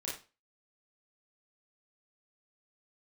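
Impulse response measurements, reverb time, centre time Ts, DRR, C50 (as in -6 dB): 0.30 s, 38 ms, -6.0 dB, 4.0 dB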